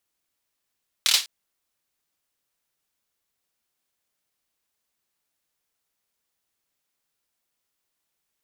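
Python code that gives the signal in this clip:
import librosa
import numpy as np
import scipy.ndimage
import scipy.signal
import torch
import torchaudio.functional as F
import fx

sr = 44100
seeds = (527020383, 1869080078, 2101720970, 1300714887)

y = fx.drum_clap(sr, seeds[0], length_s=0.2, bursts=4, spacing_ms=26, hz=3900.0, decay_s=0.25)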